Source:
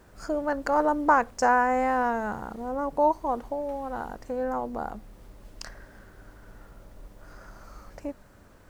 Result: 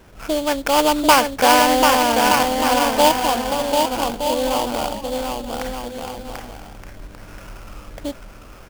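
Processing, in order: bouncing-ball echo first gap 740 ms, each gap 0.65×, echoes 5; sample-rate reducer 3.9 kHz, jitter 20%; trim +7 dB

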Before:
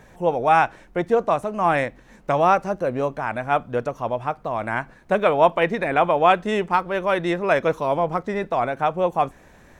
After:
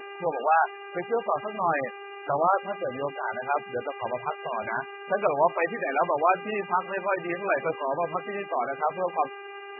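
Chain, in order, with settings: bass shelf 320 Hz -11.5 dB; mains buzz 400 Hz, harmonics 22, -35 dBFS -3 dB/octave; trim -3.5 dB; MP3 8 kbps 24 kHz

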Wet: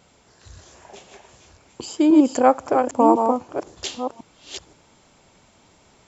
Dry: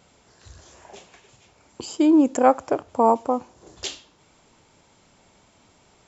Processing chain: chunks repeated in reverse 526 ms, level -5 dB; trim +1 dB

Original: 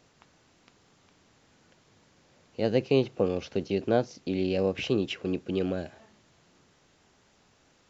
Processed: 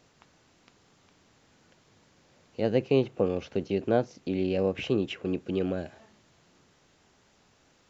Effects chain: dynamic bell 4.9 kHz, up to -7 dB, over -54 dBFS, Q 1.2

